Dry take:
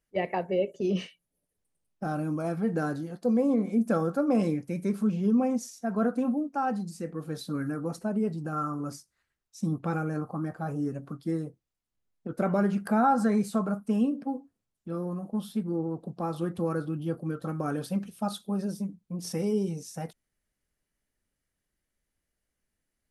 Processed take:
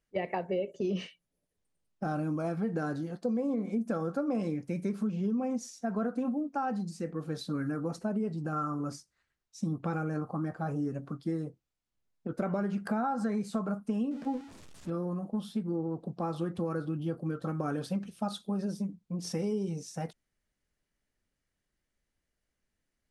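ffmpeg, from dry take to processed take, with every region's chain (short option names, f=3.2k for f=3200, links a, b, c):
-filter_complex "[0:a]asettb=1/sr,asplit=3[a][b][c];[a]atrim=end=14.114[d];[b]atrim=start=14.11:end=14.9,asetpts=PTS-STARTPTS,afade=t=in:d=0.004:c=qsin,afade=t=out:st=0.786:d=0.004:c=qsin,aeval=exprs='val(0)+0.5*0.00596*sgn(val(0))':c=same,asplit=2[e][f];[f]adelay=12,volume=-11.5dB[g];[e][g]amix=inputs=2:normalize=0,atrim=end_sample=34839[h];[c]atrim=start=14.896[i];[d][h]acrossfade=d=0.004:c1=hsin:c2=qsin[j];[j][i]acrossfade=d=0.004:c1=qsin:c2=hsin,lowpass=7.8k,acompressor=threshold=-28dB:ratio=6"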